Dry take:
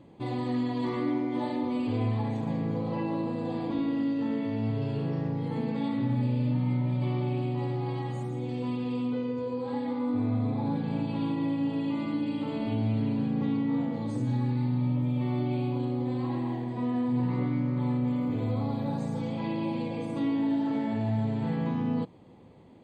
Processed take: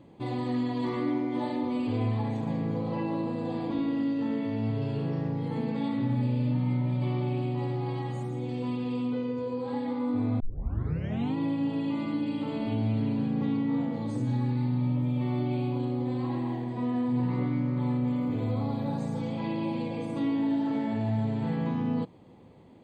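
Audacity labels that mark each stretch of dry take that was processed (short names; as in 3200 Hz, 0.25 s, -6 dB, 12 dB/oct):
10.400000	10.400000	tape start 0.96 s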